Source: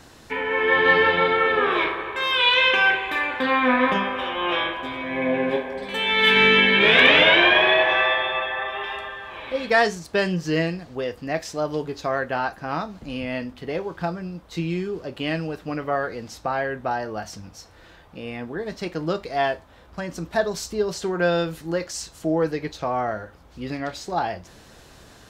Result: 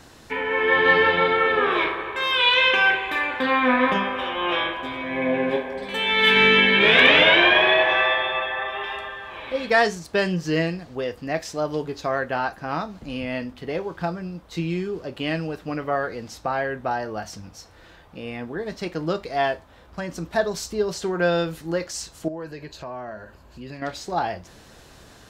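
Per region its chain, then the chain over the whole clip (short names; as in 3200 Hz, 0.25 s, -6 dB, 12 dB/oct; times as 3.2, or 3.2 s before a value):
22.28–23.82 ripple EQ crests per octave 1.4, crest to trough 7 dB + compressor 2:1, threshold -39 dBFS
whole clip: dry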